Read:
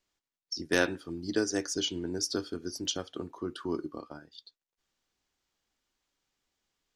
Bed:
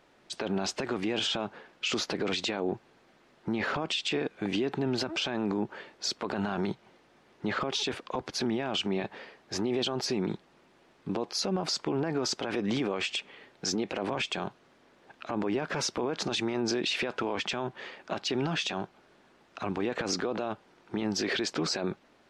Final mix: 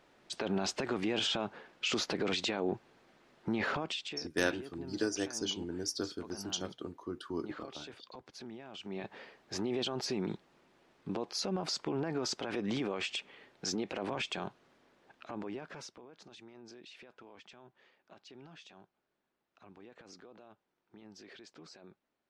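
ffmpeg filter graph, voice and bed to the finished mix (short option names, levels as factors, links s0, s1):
-filter_complex "[0:a]adelay=3650,volume=0.596[s0];[1:a]volume=2.99,afade=t=out:st=3.68:d=0.53:silence=0.188365,afade=t=in:st=8.79:d=0.41:silence=0.251189,afade=t=out:st=14.75:d=1.28:silence=0.11885[s1];[s0][s1]amix=inputs=2:normalize=0"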